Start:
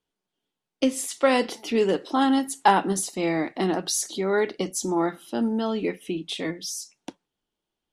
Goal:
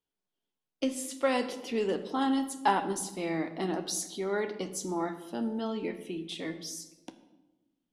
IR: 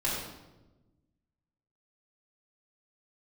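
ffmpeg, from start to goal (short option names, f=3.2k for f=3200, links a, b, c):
-filter_complex "[0:a]asplit=2[a][b];[1:a]atrim=start_sample=2205,adelay=13[c];[b][c]afir=irnorm=-1:irlink=0,volume=-17.5dB[d];[a][d]amix=inputs=2:normalize=0,volume=-8dB"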